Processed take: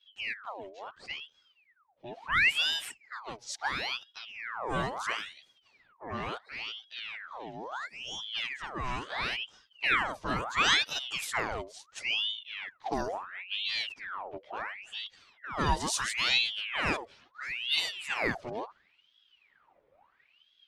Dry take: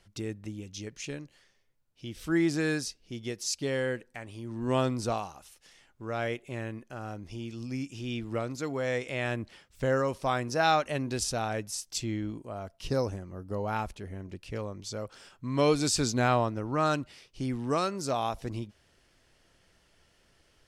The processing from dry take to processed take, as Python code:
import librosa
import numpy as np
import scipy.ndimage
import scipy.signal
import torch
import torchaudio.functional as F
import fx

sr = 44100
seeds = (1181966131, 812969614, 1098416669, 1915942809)

y = fx.env_lowpass(x, sr, base_hz=1200.0, full_db=-25.0)
y = fx.chorus_voices(y, sr, voices=4, hz=0.34, base_ms=11, depth_ms=1.7, mix_pct=65)
y = fx.ring_lfo(y, sr, carrier_hz=1900.0, swing_pct=75, hz=0.73)
y = y * librosa.db_to_amplitude(2.5)